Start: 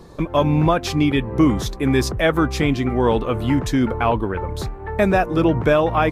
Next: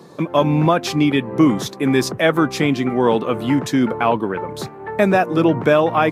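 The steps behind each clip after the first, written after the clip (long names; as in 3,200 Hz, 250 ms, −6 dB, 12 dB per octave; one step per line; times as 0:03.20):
high-pass filter 140 Hz 24 dB per octave
level +2 dB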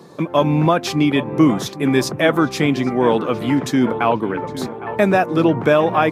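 feedback echo with a low-pass in the loop 810 ms, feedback 51%, low-pass 2,500 Hz, level −14 dB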